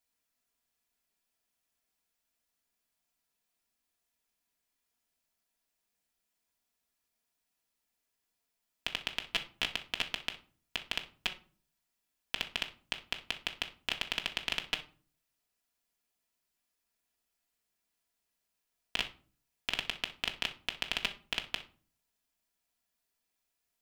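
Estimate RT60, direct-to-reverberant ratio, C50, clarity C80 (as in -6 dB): 0.40 s, 1.0 dB, 13.5 dB, 19.5 dB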